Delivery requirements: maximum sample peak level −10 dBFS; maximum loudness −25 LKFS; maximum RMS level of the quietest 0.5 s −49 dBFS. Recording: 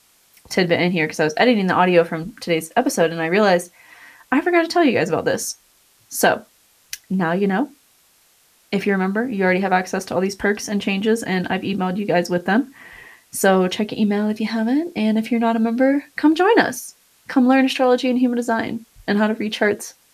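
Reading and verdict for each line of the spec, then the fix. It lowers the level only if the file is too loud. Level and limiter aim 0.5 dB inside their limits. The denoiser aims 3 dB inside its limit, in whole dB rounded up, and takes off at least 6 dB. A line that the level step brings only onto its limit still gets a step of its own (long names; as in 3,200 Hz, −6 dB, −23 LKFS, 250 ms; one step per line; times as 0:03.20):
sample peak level −2.5 dBFS: out of spec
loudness −19.0 LKFS: out of spec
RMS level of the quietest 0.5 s −57 dBFS: in spec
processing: level −6.5 dB
brickwall limiter −10.5 dBFS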